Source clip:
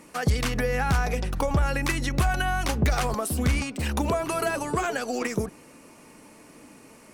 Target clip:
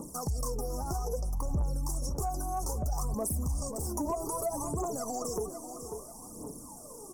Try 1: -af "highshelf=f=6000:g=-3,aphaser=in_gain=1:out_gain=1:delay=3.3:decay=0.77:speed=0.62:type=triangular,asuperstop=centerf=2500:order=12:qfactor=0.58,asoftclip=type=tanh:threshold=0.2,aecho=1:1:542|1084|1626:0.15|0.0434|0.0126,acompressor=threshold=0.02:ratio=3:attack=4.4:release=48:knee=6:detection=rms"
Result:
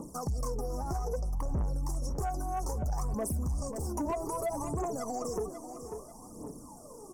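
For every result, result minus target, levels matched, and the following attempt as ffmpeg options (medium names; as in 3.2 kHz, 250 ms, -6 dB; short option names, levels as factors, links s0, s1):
saturation: distortion +11 dB; 8 kHz band -5.0 dB
-af "highshelf=f=6000:g=-3,aphaser=in_gain=1:out_gain=1:delay=3.3:decay=0.77:speed=0.62:type=triangular,asuperstop=centerf=2500:order=12:qfactor=0.58,asoftclip=type=tanh:threshold=0.562,aecho=1:1:542|1084|1626:0.15|0.0434|0.0126,acompressor=threshold=0.02:ratio=3:attack=4.4:release=48:knee=6:detection=rms"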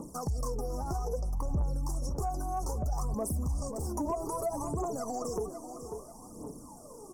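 8 kHz band -5.0 dB
-af "highshelf=f=6000:g=7,aphaser=in_gain=1:out_gain=1:delay=3.3:decay=0.77:speed=0.62:type=triangular,asuperstop=centerf=2500:order=12:qfactor=0.58,asoftclip=type=tanh:threshold=0.562,aecho=1:1:542|1084|1626:0.15|0.0434|0.0126,acompressor=threshold=0.02:ratio=3:attack=4.4:release=48:knee=6:detection=rms"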